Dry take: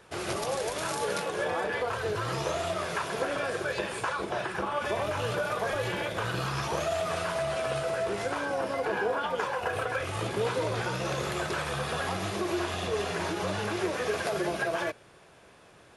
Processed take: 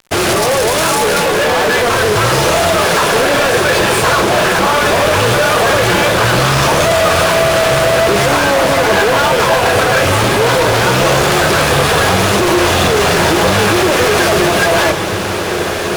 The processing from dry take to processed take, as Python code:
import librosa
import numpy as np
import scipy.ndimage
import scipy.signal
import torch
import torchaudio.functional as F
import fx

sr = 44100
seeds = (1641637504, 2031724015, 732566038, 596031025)

y = fx.fuzz(x, sr, gain_db=39.0, gate_db=-48.0)
y = fx.echo_diffused(y, sr, ms=1671, feedback_pct=58, wet_db=-6.5)
y = y * 10.0 ** (2.5 / 20.0)